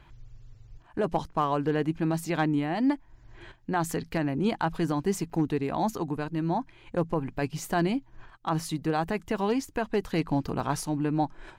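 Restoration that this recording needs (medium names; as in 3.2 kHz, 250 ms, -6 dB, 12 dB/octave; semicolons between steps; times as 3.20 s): clip repair -16 dBFS; interpolate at 5.30/10.60 s, 4.8 ms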